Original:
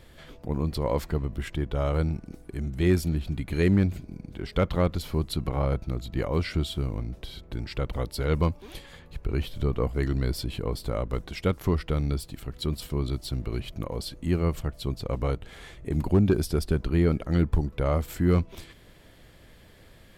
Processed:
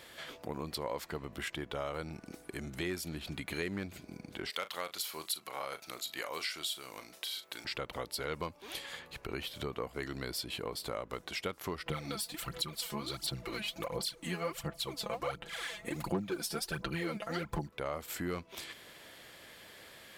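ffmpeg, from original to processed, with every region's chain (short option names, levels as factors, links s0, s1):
-filter_complex "[0:a]asettb=1/sr,asplit=3[s0][s1][s2];[s0]atrim=end=4.504[s3];[s1]atrim=start=4.5:end=7.65,asetpts=PTS-STARTPTS,afade=t=in:d=0.004:c=qsin,afade=t=out:st=3.146:d=0.004:c=qsin,highpass=f=1100:p=1,aemphasis=mode=production:type=cd,asplit=2[s4][s5];[s5]adelay=38,volume=0.224[s6];[s4][s6]amix=inputs=2:normalize=0,atrim=end_sample=138915[s7];[s2]atrim=start=7.646[s8];[s3][s7]acrossfade=d=0.004:c1=hsin:c2=qsin[s9];[s9][s8]acrossfade=d=0.004:c1=qsin:c2=hsin,asettb=1/sr,asplit=3[s10][s11][s12];[s10]atrim=end=11.864[s13];[s11]atrim=start=11.86:end=17.68,asetpts=PTS-STARTPTS,afade=t=in:d=0.004:c=qsin,afade=t=out:st=5.816:d=0.004:c=qsin,equalizer=f=350:w=4.5:g=-5,aecho=1:1:5.9:0.8,atrim=end_sample=256662,aphaser=in_gain=1:out_gain=1:delay=4.8:decay=0.68:speed=1.4:type=sinusoidal[s14];[s12]atrim=start=17.676[s15];[s13][s14]acrossfade=d=0.004:c1=hsin:c2=qsin[s16];[s16][s15]acrossfade=d=0.004:c1=qsin:c2=hsin,highpass=f=900:p=1,acompressor=threshold=0.00708:ratio=3,volume=2"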